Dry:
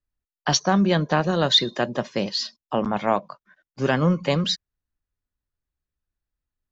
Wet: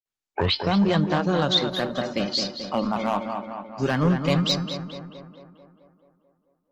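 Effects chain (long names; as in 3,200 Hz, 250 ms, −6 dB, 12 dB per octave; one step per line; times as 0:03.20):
turntable start at the beginning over 0.74 s
noise reduction from a noise print of the clip's start 8 dB
dynamic equaliser 620 Hz, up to −4 dB, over −40 dBFS, Q 7
in parallel at +0.5 dB: brickwall limiter −13.5 dBFS, peak gain reduction 7.5 dB
on the sum: hard clipping −9 dBFS, distortion −18 dB
tuned comb filter 300 Hz, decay 0.59 s, mix 50%
on a send: tape delay 219 ms, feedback 66%, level −4.5 dB, low-pass 2,500 Hz
on the sum: Opus 20 kbit/s 48,000 Hz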